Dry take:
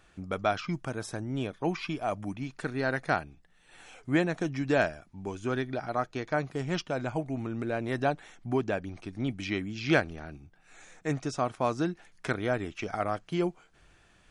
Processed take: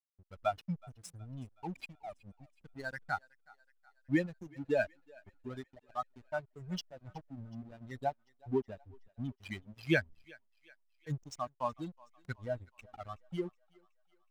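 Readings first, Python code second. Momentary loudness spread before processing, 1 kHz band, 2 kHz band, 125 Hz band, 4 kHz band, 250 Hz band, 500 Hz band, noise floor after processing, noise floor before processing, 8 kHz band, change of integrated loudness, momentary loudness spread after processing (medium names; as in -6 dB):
10 LU, -8.0 dB, -7.5 dB, -8.5 dB, -9.0 dB, -8.5 dB, -8.0 dB, -73 dBFS, -62 dBFS, -9.5 dB, -7.5 dB, 20 LU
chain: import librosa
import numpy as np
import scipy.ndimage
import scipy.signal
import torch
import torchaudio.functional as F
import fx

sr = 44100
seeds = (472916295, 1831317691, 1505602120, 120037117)

y = fx.bin_expand(x, sr, power=3.0)
y = fx.backlash(y, sr, play_db=-44.5)
y = fx.echo_thinned(y, sr, ms=371, feedback_pct=58, hz=630.0, wet_db=-22.5)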